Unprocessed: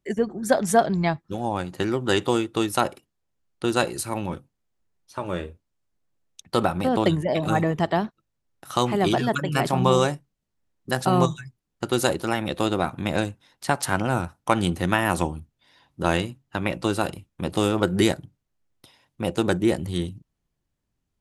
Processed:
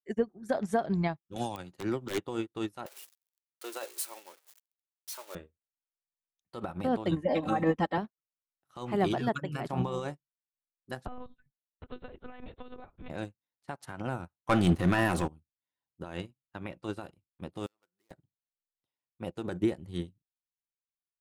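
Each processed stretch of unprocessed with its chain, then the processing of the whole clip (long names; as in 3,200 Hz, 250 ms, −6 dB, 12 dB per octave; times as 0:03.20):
0:01.36–0:02.26: wrap-around overflow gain 12.5 dB + multiband upward and downward compressor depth 100%
0:02.86–0:05.35: spike at every zero crossing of −15 dBFS + high-pass filter 410 Hz 24 dB per octave
0:07.11–0:07.98: high-shelf EQ 10,000 Hz −8 dB + comb filter 3.8 ms, depth 97%
0:11.06–0:13.10: downward compressor 16 to 1, threshold −23 dBFS + one-pitch LPC vocoder at 8 kHz 250 Hz
0:14.49–0:15.28: leveller curve on the samples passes 3 + notch filter 900 Hz, Q 14
0:17.66–0:18.11: running median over 15 samples + first difference
whole clip: high-shelf EQ 3,700 Hz −8 dB; brickwall limiter −15 dBFS; expander for the loud parts 2.5 to 1, over −44 dBFS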